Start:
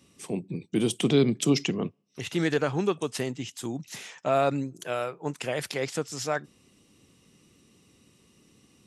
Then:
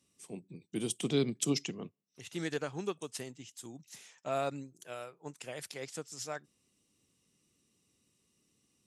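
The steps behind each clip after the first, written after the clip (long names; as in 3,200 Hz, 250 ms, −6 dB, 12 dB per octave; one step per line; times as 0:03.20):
parametric band 8,700 Hz +8.5 dB 1.8 octaves
expander for the loud parts 1.5 to 1, over −35 dBFS
level −8 dB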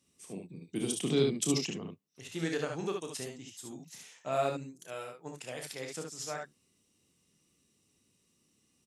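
ambience of single reflections 31 ms −7.5 dB, 60 ms −8 dB, 72 ms −5 dB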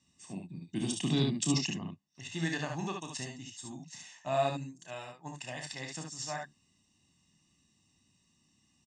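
Butterworth low-pass 8,100 Hz 48 dB per octave
comb filter 1.1 ms, depth 79%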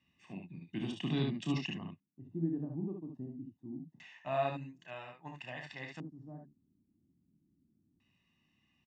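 dynamic equaliser 2,300 Hz, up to −6 dB, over −55 dBFS, Q 2.3
auto-filter low-pass square 0.25 Hz 300–2,400 Hz
level −4 dB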